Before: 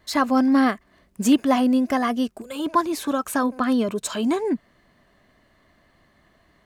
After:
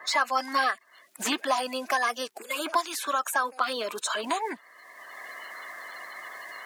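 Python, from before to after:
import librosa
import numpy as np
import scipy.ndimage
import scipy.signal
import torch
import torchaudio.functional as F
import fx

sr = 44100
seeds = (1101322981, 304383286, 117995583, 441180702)

y = fx.spec_quant(x, sr, step_db=30)
y = scipy.signal.sosfilt(scipy.signal.butter(2, 1000.0, 'highpass', fs=sr, output='sos'), y)
y = fx.band_squash(y, sr, depth_pct=70)
y = F.gain(torch.from_numpy(y), 2.0).numpy()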